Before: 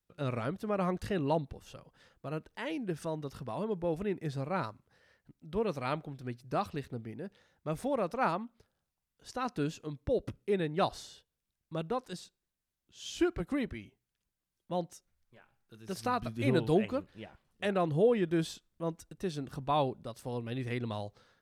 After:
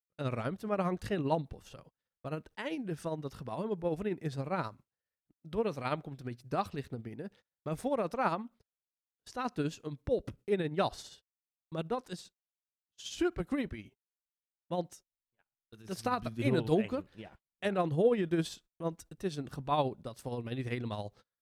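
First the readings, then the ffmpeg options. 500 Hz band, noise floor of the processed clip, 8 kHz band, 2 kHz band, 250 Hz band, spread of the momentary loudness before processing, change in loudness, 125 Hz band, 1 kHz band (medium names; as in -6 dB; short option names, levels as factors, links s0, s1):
-0.5 dB, under -85 dBFS, -0.5 dB, -1.0 dB, -1.0 dB, 16 LU, -1.0 dB, -0.5 dB, -0.5 dB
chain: -af "acontrast=39,tremolo=f=15:d=0.49,agate=range=0.0316:threshold=0.00282:ratio=16:detection=peak,volume=0.631"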